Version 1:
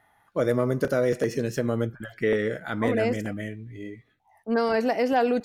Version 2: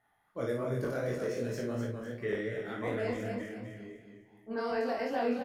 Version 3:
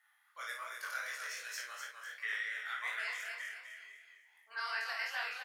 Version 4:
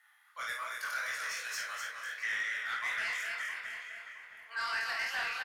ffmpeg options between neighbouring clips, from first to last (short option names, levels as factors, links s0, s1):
-filter_complex "[0:a]asplit=2[s0][s1];[s1]aecho=0:1:252|504|756|1008|1260:0.501|0.195|0.0762|0.0297|0.0116[s2];[s0][s2]amix=inputs=2:normalize=0,flanger=delay=15.5:depth=7:speed=2.7,asplit=2[s3][s4];[s4]aecho=0:1:25|54:0.596|0.562[s5];[s3][s5]amix=inputs=2:normalize=0,volume=0.355"
-af "highpass=f=1300:w=0.5412,highpass=f=1300:w=1.3066,volume=2"
-filter_complex "[0:a]asplit=2[s0][s1];[s1]highpass=f=720:p=1,volume=3.98,asoftclip=type=tanh:threshold=0.0501[s2];[s0][s2]amix=inputs=2:normalize=0,lowpass=f=2700:p=1,volume=0.501,aemphasis=mode=production:type=cd,asplit=2[s3][s4];[s4]adelay=666,lowpass=f=1900:p=1,volume=0.398,asplit=2[s5][s6];[s6]adelay=666,lowpass=f=1900:p=1,volume=0.4,asplit=2[s7][s8];[s8]adelay=666,lowpass=f=1900:p=1,volume=0.4,asplit=2[s9][s10];[s10]adelay=666,lowpass=f=1900:p=1,volume=0.4,asplit=2[s11][s12];[s12]adelay=666,lowpass=f=1900:p=1,volume=0.4[s13];[s3][s5][s7][s9][s11][s13]amix=inputs=6:normalize=0"